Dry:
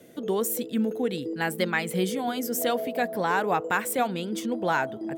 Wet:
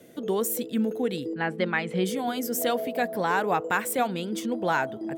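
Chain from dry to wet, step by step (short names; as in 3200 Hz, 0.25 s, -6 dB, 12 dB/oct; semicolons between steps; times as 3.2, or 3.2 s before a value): 1.33–2.04 LPF 2300 Hz -> 4100 Hz 12 dB/oct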